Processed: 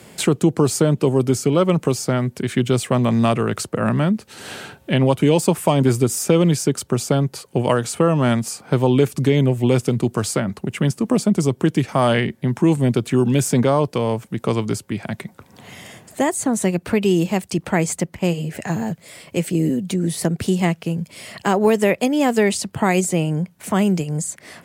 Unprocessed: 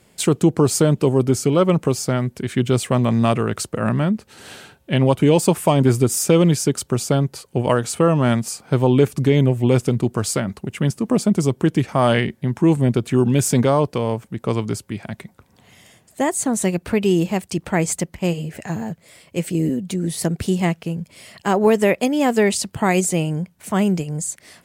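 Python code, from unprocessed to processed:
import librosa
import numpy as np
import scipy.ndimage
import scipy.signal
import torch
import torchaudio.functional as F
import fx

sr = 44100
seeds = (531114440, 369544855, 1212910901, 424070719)

y = scipy.signal.sosfilt(scipy.signal.butter(2, 84.0, 'highpass', fs=sr, output='sos'), x)
y = fx.band_squash(y, sr, depth_pct=40)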